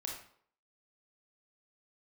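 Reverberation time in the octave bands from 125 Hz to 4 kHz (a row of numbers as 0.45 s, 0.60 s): 0.50 s, 0.55 s, 0.60 s, 0.60 s, 0.50 s, 0.45 s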